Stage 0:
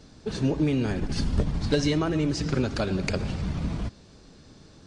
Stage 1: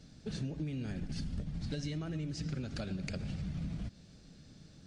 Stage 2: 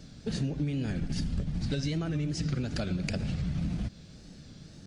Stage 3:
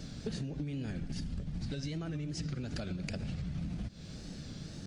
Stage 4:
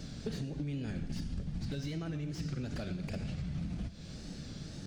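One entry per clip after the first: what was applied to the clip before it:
fifteen-band EQ 160 Hz +6 dB, 400 Hz -6 dB, 1000 Hz -10 dB; compressor, threshold -29 dBFS, peak gain reduction 11 dB; gain -6 dB
wow and flutter 88 cents; gain +7 dB
compressor 10:1, threshold -39 dBFS, peak gain reduction 13.5 dB; gain +4.5 dB
Schroeder reverb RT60 0.88 s, combs from 28 ms, DRR 11.5 dB; slew limiter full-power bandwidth 22 Hz

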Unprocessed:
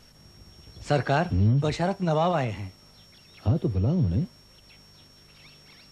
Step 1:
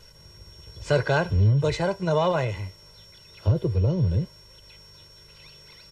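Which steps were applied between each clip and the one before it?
comb 2 ms, depth 76%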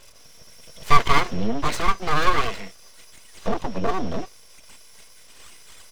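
bell 2400 Hz +9.5 dB 2.5 oct; small resonant body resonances 570/3300 Hz, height 17 dB, ringing for 90 ms; full-wave rectifier; gain -1.5 dB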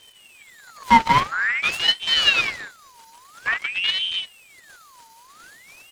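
ring modulator with a swept carrier 2000 Hz, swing 55%, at 0.49 Hz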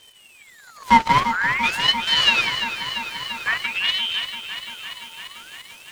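lo-fi delay 0.342 s, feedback 80%, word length 7-bit, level -10 dB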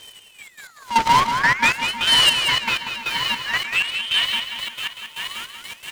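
soft clip -17.5 dBFS, distortion -7 dB; step gate "xx..x.x...x" 157 bpm -12 dB; echo 0.188 s -7.5 dB; gain +7.5 dB

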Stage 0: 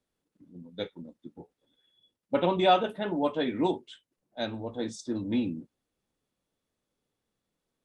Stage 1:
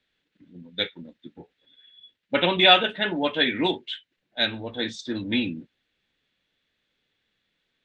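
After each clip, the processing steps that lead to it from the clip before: LPF 7000 Hz 24 dB/oct; band shelf 2500 Hz +14 dB; gain +2 dB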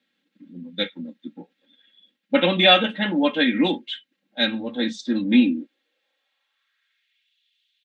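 high-pass sweep 190 Hz -> 3100 Hz, 5.29–7.35; comb 3.7 ms, depth 77%; gain -1 dB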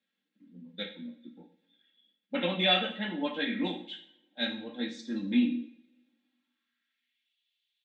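flange 0.58 Hz, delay 9.5 ms, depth 9.1 ms, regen -52%; two-slope reverb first 0.54 s, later 1.8 s, from -25 dB, DRR 4.5 dB; gain -8 dB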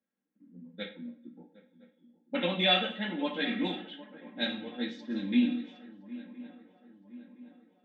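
swung echo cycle 1.016 s, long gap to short 3:1, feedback 51%, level -17.5 dB; low-pass opened by the level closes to 1100 Hz, open at -26 dBFS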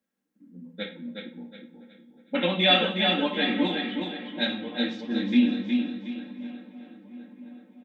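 feedback echo 0.366 s, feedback 35%, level -5 dB; gain +5 dB

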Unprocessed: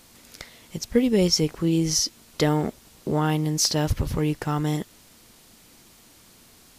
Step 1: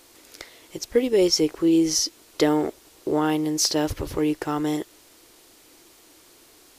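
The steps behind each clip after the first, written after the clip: resonant low shelf 260 Hz -7 dB, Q 3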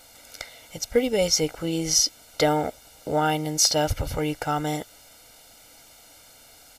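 comb 1.4 ms, depth 90%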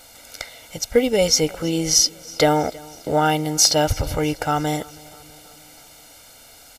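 feedback echo 0.323 s, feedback 60%, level -23 dB; gain +4.5 dB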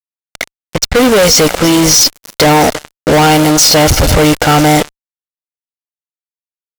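low-pass opened by the level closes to 1900 Hz, open at -17.5 dBFS; fuzz box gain 35 dB, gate -33 dBFS; gain +7.5 dB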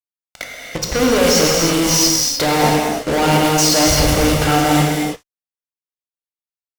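non-linear reverb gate 0.35 s flat, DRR -2.5 dB; gain -10 dB

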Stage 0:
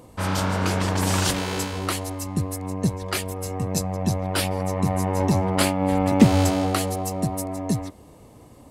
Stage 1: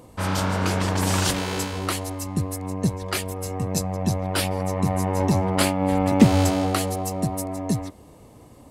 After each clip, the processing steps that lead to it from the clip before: nothing audible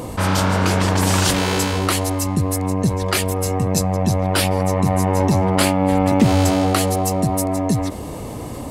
fast leveller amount 50%; gain -1.5 dB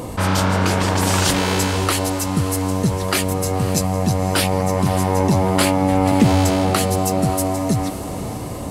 diffused feedback echo 0.553 s, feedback 58%, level -12 dB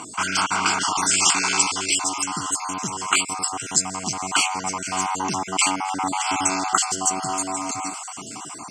random spectral dropouts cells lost 32%; speaker cabinet 470–9600 Hz, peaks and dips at 570 Hz -9 dB, 910 Hz -3 dB, 1600 Hz +7 dB, 3900 Hz +6 dB, 7900 Hz +10 dB; fixed phaser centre 2600 Hz, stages 8; gain +4 dB

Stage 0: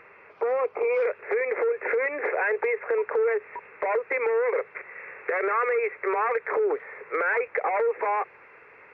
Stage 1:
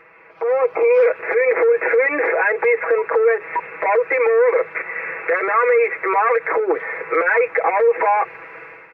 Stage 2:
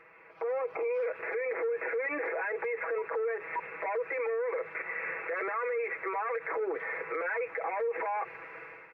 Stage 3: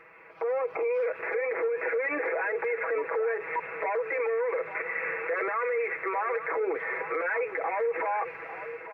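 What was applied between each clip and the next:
limiter -24.5 dBFS, peak gain reduction 9 dB; comb 6.1 ms, depth 86%; AGC gain up to 12 dB
limiter -17.5 dBFS, peak gain reduction 10 dB; gain -8.5 dB
echo 0.85 s -12 dB; gain +3.5 dB

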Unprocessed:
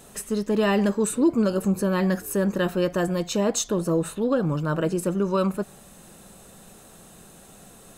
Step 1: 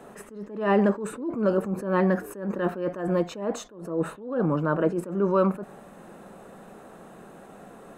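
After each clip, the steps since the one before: in parallel at +1 dB: limiter -21.5 dBFS, peak gain reduction 10 dB; on the sum: three-band isolator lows -14 dB, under 190 Hz, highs -20 dB, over 2000 Hz; attack slew limiter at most 100 dB/s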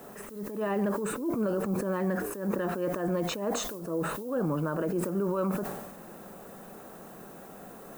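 limiter -20.5 dBFS, peak gain reduction 10.5 dB; added noise violet -54 dBFS; sustainer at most 43 dB/s; gain -1 dB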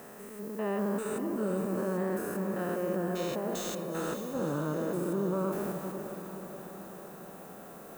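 stepped spectrum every 0.2 s; low shelf 120 Hz -6 dB; diffused feedback echo 0.455 s, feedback 58%, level -8 dB

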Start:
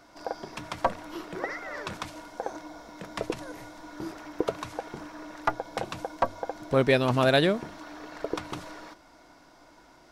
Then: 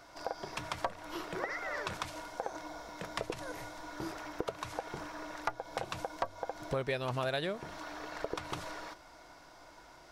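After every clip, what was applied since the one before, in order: bell 250 Hz -8.5 dB 0.95 oct; compressor 4:1, threshold -34 dBFS, peak gain reduction 13.5 dB; gain +1 dB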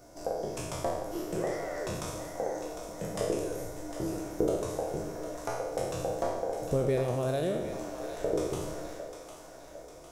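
spectral trails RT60 1.00 s; band shelf 2000 Hz -15 dB 2.8 oct; split-band echo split 530 Hz, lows 0.129 s, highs 0.754 s, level -9 dB; gain +5 dB

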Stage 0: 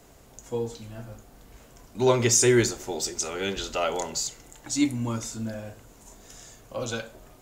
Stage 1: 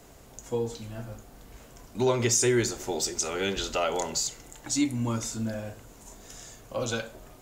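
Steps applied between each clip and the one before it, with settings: compressor 2:1, threshold -26 dBFS, peak gain reduction 6.5 dB; gain +1.5 dB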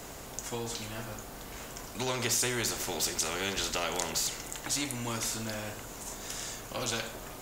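spectral compressor 2:1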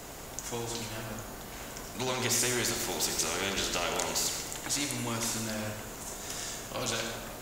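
reverb RT60 1.0 s, pre-delay 67 ms, DRR 5 dB

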